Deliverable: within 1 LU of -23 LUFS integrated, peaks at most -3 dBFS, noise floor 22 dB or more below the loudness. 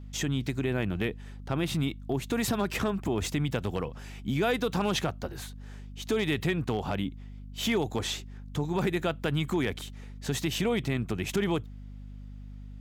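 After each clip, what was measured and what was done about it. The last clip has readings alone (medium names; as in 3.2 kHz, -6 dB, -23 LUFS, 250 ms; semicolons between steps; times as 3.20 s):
clipped samples 0.3%; clipping level -19.5 dBFS; hum 50 Hz; highest harmonic 250 Hz; hum level -41 dBFS; loudness -30.5 LUFS; peak level -19.5 dBFS; loudness target -23.0 LUFS
-> clip repair -19.5 dBFS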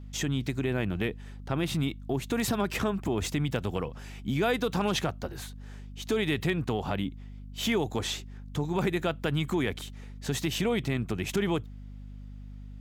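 clipped samples 0.0%; hum 50 Hz; highest harmonic 250 Hz; hum level -41 dBFS
-> hum notches 50/100/150/200/250 Hz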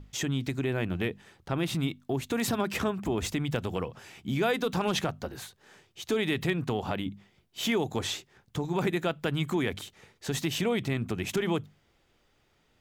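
hum not found; loudness -31.0 LUFS; peak level -15.0 dBFS; loudness target -23.0 LUFS
-> trim +8 dB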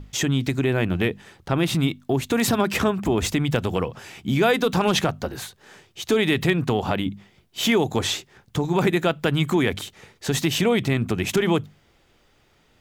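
loudness -23.0 LUFS; peak level -7.0 dBFS; noise floor -61 dBFS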